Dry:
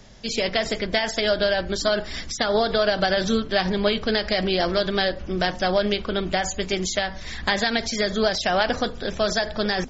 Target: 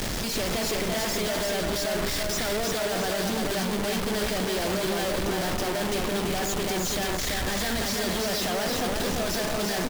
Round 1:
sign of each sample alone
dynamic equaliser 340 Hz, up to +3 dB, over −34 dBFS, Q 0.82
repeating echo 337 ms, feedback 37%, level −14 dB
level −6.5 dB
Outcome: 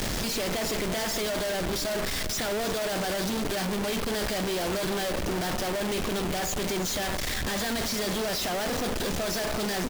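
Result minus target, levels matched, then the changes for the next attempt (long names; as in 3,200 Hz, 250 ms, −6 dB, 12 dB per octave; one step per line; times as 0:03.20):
echo-to-direct −11 dB
change: repeating echo 337 ms, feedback 37%, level −3 dB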